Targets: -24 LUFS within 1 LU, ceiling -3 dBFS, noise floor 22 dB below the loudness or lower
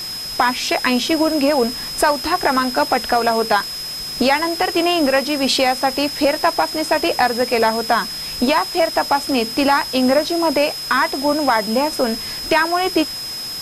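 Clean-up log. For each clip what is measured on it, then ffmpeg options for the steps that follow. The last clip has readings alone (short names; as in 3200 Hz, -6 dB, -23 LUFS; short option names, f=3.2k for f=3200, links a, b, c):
steady tone 5100 Hz; tone level -26 dBFS; noise floor -28 dBFS; noise floor target -40 dBFS; loudness -17.5 LUFS; peak -4.5 dBFS; loudness target -24.0 LUFS
-> -af "bandreject=f=5.1k:w=30"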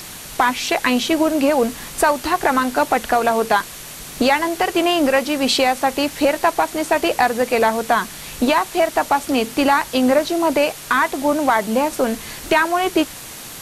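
steady tone none; noise floor -35 dBFS; noise floor target -40 dBFS
-> -af "afftdn=nr=6:nf=-35"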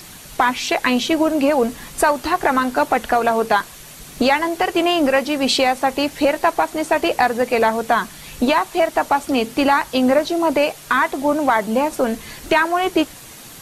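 noise floor -39 dBFS; noise floor target -41 dBFS
-> -af "afftdn=nr=6:nf=-39"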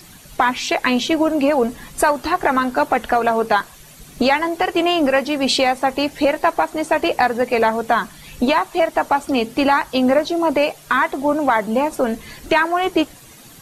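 noise floor -43 dBFS; loudness -18.5 LUFS; peak -5.0 dBFS; loudness target -24.0 LUFS
-> -af "volume=-5.5dB"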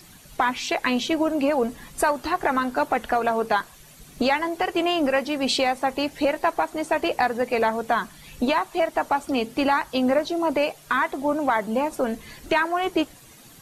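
loudness -24.0 LUFS; peak -10.5 dBFS; noise floor -49 dBFS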